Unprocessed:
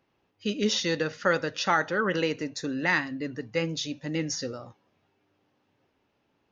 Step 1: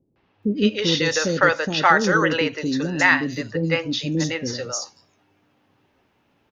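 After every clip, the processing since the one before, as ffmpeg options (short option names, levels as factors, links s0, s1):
-filter_complex "[0:a]acrossover=split=450|5100[s0][s1][s2];[s1]adelay=160[s3];[s2]adelay=430[s4];[s0][s3][s4]amix=inputs=3:normalize=0,volume=2.82"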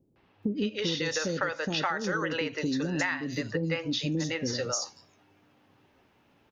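-af "acompressor=threshold=0.0501:ratio=12"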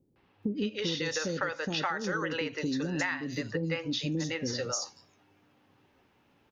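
-af "bandreject=f=640:w=15,volume=0.794"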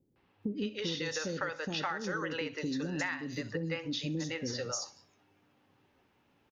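-af "aecho=1:1:65|130|195:0.1|0.046|0.0212,volume=0.668"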